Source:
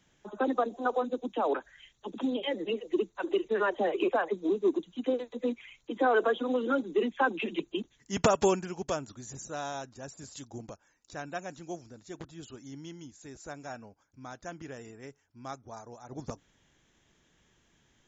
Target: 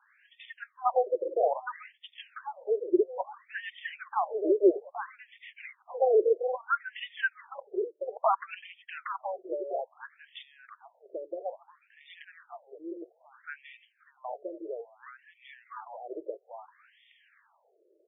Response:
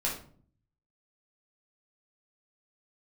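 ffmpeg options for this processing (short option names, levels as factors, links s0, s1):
-filter_complex "[0:a]asplit=2[s0][s1];[s1]acompressor=threshold=0.00631:ratio=5,volume=1.41[s2];[s0][s2]amix=inputs=2:normalize=0,asplit=2[s3][s4];[s4]adelay=816.3,volume=0.447,highshelf=f=4000:g=-18.4[s5];[s3][s5]amix=inputs=2:normalize=0,asettb=1/sr,asplit=3[s6][s7][s8];[s6]atrim=end=5.284[s9];[s7]atrim=start=5.28:end=6.02,asetpts=PTS-STARTPTS,afade=t=in:d=0.004:c=qsin,afade=t=out:st=0.736:d=0.004:c=qsin,asoftclip=type=hard:threshold=0.0266[s10];[s8]atrim=start=6.016[s11];[s9][s10]acrossfade=d=0.004:c1=hsin:c2=qsin[s12];[s12][s11]acrossfade=d=0.004:c1=qsin:c2=hsin,afftfilt=real='re*between(b*sr/1024,440*pow(2600/440,0.5+0.5*sin(2*PI*0.6*pts/sr))/1.41,440*pow(2600/440,0.5+0.5*sin(2*PI*0.6*pts/sr))*1.41)':imag='im*between(b*sr/1024,440*pow(2600/440,0.5+0.5*sin(2*PI*0.6*pts/sr))/1.41,440*pow(2600/440,0.5+0.5*sin(2*PI*0.6*pts/sr))*1.41)':win_size=1024:overlap=0.75,volume=1.5"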